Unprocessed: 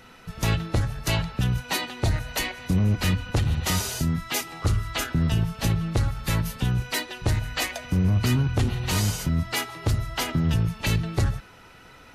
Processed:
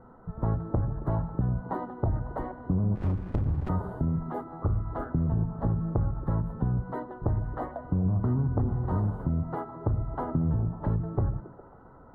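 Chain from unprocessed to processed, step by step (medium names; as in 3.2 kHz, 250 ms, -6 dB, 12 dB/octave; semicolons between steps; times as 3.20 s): inverse Chebyshev low-pass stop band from 2.3 kHz, stop band 40 dB; compression, threshold -23 dBFS, peak gain reduction 5.5 dB; repeats whose band climbs or falls 136 ms, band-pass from 200 Hz, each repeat 0.7 oct, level -9 dB; 2.95–3.69 s: sliding maximum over 65 samples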